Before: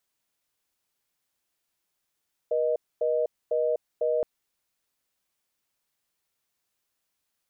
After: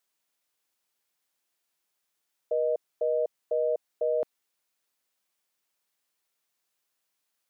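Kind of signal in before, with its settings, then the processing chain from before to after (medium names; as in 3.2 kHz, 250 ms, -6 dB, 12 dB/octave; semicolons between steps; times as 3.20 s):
call progress tone reorder tone, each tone -25 dBFS 1.72 s
high-pass 280 Hz 6 dB/octave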